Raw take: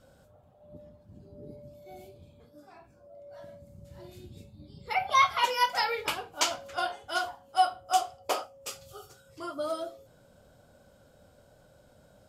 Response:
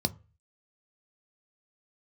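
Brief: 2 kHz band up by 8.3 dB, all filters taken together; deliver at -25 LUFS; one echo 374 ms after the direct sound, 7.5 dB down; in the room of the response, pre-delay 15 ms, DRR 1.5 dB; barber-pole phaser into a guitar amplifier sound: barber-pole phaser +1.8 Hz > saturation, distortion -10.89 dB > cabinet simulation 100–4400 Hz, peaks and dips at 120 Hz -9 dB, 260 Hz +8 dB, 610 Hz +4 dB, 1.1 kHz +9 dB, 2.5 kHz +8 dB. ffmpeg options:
-filter_complex "[0:a]equalizer=f=2000:t=o:g=5.5,aecho=1:1:374:0.422,asplit=2[s0][s1];[1:a]atrim=start_sample=2205,adelay=15[s2];[s1][s2]afir=irnorm=-1:irlink=0,volume=0.447[s3];[s0][s3]amix=inputs=2:normalize=0,asplit=2[s4][s5];[s5]afreqshift=1.8[s6];[s4][s6]amix=inputs=2:normalize=1,asoftclip=threshold=0.141,highpass=100,equalizer=f=120:t=q:w=4:g=-9,equalizer=f=260:t=q:w=4:g=8,equalizer=f=610:t=q:w=4:g=4,equalizer=f=1100:t=q:w=4:g=9,equalizer=f=2500:t=q:w=4:g=8,lowpass=f=4400:w=0.5412,lowpass=f=4400:w=1.3066"

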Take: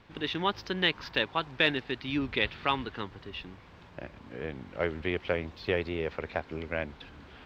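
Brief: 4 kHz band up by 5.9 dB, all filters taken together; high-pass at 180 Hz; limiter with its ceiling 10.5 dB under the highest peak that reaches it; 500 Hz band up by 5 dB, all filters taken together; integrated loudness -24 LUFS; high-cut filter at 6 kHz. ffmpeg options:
-af "highpass=180,lowpass=6000,equalizer=f=500:t=o:g=6,equalizer=f=4000:t=o:g=8,volume=2.66,alimiter=limit=0.316:level=0:latency=1"

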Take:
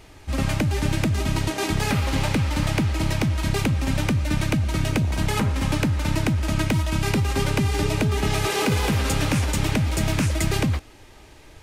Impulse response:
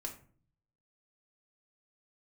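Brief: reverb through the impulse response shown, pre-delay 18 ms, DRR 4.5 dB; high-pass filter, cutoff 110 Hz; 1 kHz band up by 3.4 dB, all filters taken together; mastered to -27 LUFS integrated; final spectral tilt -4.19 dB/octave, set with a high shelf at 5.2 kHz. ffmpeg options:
-filter_complex "[0:a]highpass=110,equalizer=f=1000:t=o:g=4,highshelf=f=5200:g=7.5,asplit=2[s0][s1];[1:a]atrim=start_sample=2205,adelay=18[s2];[s1][s2]afir=irnorm=-1:irlink=0,volume=0.708[s3];[s0][s3]amix=inputs=2:normalize=0,volume=0.562"

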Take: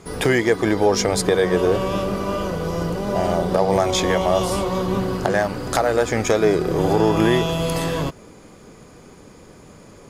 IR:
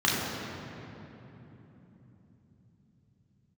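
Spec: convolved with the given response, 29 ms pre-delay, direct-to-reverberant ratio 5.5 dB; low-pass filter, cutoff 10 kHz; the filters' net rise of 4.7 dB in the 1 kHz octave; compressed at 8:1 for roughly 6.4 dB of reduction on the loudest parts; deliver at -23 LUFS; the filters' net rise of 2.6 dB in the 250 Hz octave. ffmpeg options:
-filter_complex "[0:a]lowpass=10000,equalizer=f=250:t=o:g=3.5,equalizer=f=1000:t=o:g=6,acompressor=threshold=0.158:ratio=8,asplit=2[s0][s1];[1:a]atrim=start_sample=2205,adelay=29[s2];[s1][s2]afir=irnorm=-1:irlink=0,volume=0.0944[s3];[s0][s3]amix=inputs=2:normalize=0,volume=0.708"

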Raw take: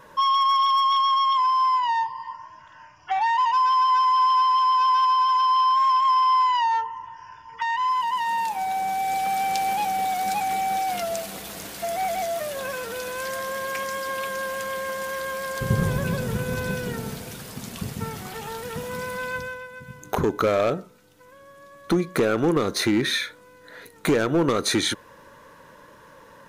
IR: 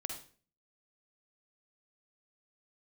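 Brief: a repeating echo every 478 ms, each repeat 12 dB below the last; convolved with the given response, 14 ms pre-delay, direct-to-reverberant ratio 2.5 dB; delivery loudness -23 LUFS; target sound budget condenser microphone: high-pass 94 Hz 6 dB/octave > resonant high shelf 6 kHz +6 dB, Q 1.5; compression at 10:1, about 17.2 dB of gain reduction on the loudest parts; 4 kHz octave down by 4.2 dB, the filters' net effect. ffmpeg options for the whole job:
-filter_complex "[0:a]equalizer=f=4000:t=o:g=-4,acompressor=threshold=0.02:ratio=10,aecho=1:1:478|956|1434:0.251|0.0628|0.0157,asplit=2[s0][s1];[1:a]atrim=start_sample=2205,adelay=14[s2];[s1][s2]afir=irnorm=-1:irlink=0,volume=0.794[s3];[s0][s3]amix=inputs=2:normalize=0,highpass=f=94:p=1,highshelf=f=6000:t=q:w=1.5:g=6,volume=3.76"

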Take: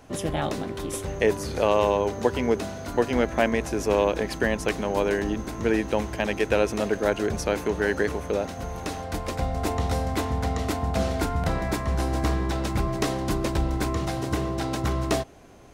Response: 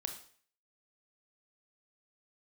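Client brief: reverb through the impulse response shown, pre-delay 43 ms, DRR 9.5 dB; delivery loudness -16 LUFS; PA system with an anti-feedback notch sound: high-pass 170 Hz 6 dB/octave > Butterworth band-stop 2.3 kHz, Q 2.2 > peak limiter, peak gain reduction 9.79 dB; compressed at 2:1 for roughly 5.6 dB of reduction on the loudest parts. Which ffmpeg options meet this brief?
-filter_complex "[0:a]acompressor=threshold=0.0501:ratio=2,asplit=2[s0][s1];[1:a]atrim=start_sample=2205,adelay=43[s2];[s1][s2]afir=irnorm=-1:irlink=0,volume=0.355[s3];[s0][s3]amix=inputs=2:normalize=0,highpass=f=170:p=1,asuperstop=centerf=2300:order=8:qfactor=2.2,volume=7.5,alimiter=limit=0.531:level=0:latency=1"

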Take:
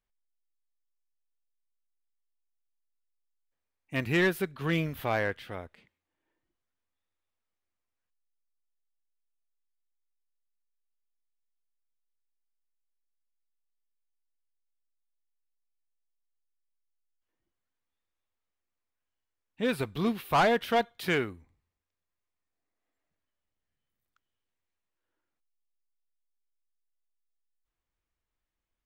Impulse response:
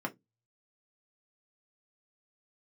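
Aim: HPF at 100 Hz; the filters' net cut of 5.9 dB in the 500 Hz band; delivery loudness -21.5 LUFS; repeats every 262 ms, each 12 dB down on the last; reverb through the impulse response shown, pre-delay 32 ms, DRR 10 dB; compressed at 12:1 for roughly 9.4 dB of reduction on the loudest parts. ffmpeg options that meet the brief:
-filter_complex "[0:a]highpass=100,equalizer=f=500:t=o:g=-8,acompressor=threshold=0.0251:ratio=12,aecho=1:1:262|524|786:0.251|0.0628|0.0157,asplit=2[s0][s1];[1:a]atrim=start_sample=2205,adelay=32[s2];[s1][s2]afir=irnorm=-1:irlink=0,volume=0.2[s3];[s0][s3]amix=inputs=2:normalize=0,volume=6.31"

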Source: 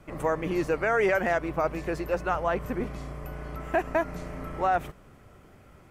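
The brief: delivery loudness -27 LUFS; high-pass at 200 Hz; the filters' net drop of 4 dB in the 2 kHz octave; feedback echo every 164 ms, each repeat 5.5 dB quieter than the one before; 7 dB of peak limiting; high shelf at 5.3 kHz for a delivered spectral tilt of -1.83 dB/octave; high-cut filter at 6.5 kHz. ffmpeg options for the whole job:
-af "highpass=200,lowpass=6500,equalizer=f=2000:t=o:g=-5,highshelf=f=5300:g=-3.5,alimiter=limit=0.0794:level=0:latency=1,aecho=1:1:164|328|492|656|820|984|1148:0.531|0.281|0.149|0.079|0.0419|0.0222|0.0118,volume=1.78"

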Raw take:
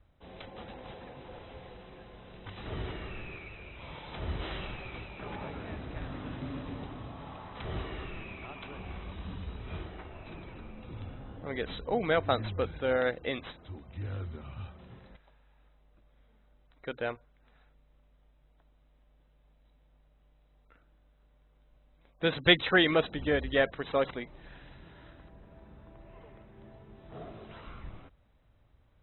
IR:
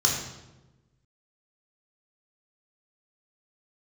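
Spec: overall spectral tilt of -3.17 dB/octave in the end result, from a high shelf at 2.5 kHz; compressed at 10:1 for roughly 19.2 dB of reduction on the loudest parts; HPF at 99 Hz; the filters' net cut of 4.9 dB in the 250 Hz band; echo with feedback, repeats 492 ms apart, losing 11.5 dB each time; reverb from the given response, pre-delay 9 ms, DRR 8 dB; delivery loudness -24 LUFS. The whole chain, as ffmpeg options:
-filter_complex "[0:a]highpass=99,equalizer=f=250:t=o:g=-7.5,highshelf=f=2500:g=6,acompressor=threshold=0.02:ratio=10,aecho=1:1:492|984|1476:0.266|0.0718|0.0194,asplit=2[s0][s1];[1:a]atrim=start_sample=2205,adelay=9[s2];[s1][s2]afir=irnorm=-1:irlink=0,volume=0.1[s3];[s0][s3]amix=inputs=2:normalize=0,volume=7.5"

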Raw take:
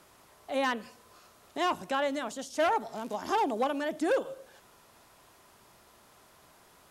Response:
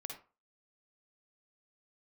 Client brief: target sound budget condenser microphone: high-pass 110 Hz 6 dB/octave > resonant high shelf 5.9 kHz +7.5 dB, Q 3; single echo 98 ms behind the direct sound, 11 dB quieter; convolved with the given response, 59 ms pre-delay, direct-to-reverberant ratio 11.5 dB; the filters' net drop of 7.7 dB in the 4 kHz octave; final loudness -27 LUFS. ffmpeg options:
-filter_complex "[0:a]equalizer=f=4000:t=o:g=-8,aecho=1:1:98:0.282,asplit=2[s0][s1];[1:a]atrim=start_sample=2205,adelay=59[s2];[s1][s2]afir=irnorm=-1:irlink=0,volume=0.355[s3];[s0][s3]amix=inputs=2:normalize=0,highpass=f=110:p=1,highshelf=f=5900:t=q:w=3:g=7.5,volume=1.58"

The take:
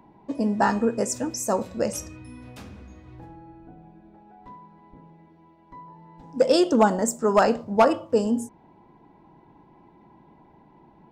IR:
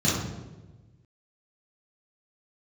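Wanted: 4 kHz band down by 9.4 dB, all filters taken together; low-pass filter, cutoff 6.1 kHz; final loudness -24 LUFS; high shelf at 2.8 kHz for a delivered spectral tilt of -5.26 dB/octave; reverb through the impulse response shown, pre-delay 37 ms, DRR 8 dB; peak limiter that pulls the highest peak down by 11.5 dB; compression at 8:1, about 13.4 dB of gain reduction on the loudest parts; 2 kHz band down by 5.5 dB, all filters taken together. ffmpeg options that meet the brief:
-filter_complex "[0:a]lowpass=6100,equalizer=f=2000:t=o:g=-5,highshelf=f=2800:g=-4.5,equalizer=f=4000:t=o:g=-6,acompressor=threshold=0.0398:ratio=8,alimiter=level_in=1.78:limit=0.0631:level=0:latency=1,volume=0.562,asplit=2[s0][s1];[1:a]atrim=start_sample=2205,adelay=37[s2];[s1][s2]afir=irnorm=-1:irlink=0,volume=0.0841[s3];[s0][s3]amix=inputs=2:normalize=0,volume=4.22"

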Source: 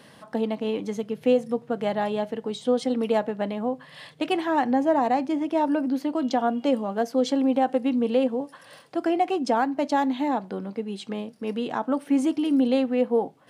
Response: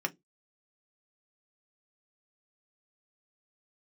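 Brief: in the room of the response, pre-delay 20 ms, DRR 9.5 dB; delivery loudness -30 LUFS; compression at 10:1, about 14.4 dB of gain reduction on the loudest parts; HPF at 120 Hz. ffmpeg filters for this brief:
-filter_complex "[0:a]highpass=120,acompressor=threshold=0.0251:ratio=10,asplit=2[s0][s1];[1:a]atrim=start_sample=2205,adelay=20[s2];[s1][s2]afir=irnorm=-1:irlink=0,volume=0.178[s3];[s0][s3]amix=inputs=2:normalize=0,volume=2.11"

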